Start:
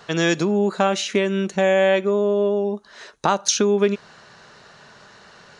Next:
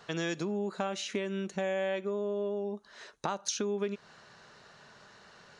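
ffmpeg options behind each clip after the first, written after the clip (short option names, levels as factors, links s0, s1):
-af "acompressor=threshold=0.0562:ratio=2,volume=0.376"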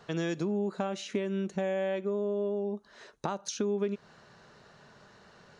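-af "tiltshelf=f=740:g=4"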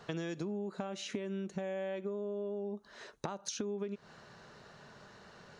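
-af "acompressor=threshold=0.0158:ratio=6,volume=1.12"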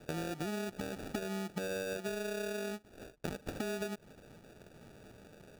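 -af "acrusher=samples=42:mix=1:aa=0.000001"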